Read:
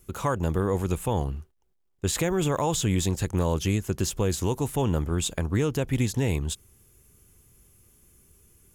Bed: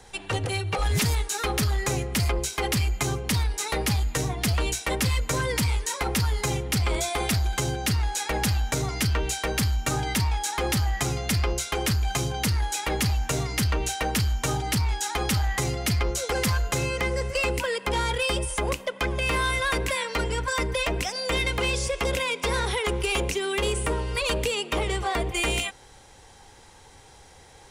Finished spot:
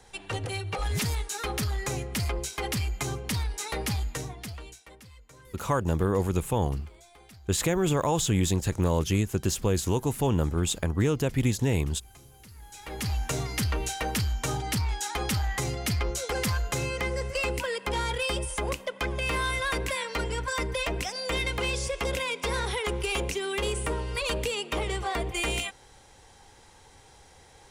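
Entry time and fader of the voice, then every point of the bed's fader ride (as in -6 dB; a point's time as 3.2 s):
5.45 s, 0.0 dB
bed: 4.06 s -5 dB
5.05 s -27 dB
12.48 s -27 dB
13.14 s -3.5 dB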